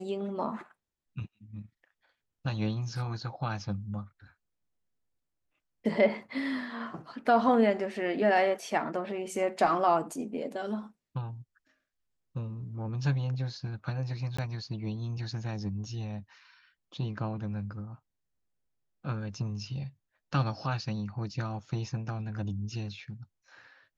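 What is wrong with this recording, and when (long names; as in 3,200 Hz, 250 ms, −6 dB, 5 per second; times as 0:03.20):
0:14.37–0:14.38: drop-out 15 ms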